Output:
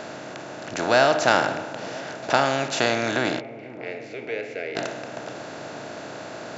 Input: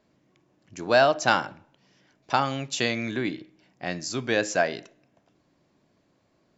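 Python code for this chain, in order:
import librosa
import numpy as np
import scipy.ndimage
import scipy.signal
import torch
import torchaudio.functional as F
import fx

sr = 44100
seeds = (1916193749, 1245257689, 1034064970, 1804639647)

p1 = fx.bin_compress(x, sr, power=0.4)
p2 = fx.double_bandpass(p1, sr, hz=990.0, octaves=2.3, at=(3.39, 4.75), fade=0.02)
p3 = p2 + fx.echo_wet_lowpass(p2, sr, ms=488, feedback_pct=75, hz=630.0, wet_db=-15, dry=0)
y = p3 * librosa.db_to_amplitude(-2.0)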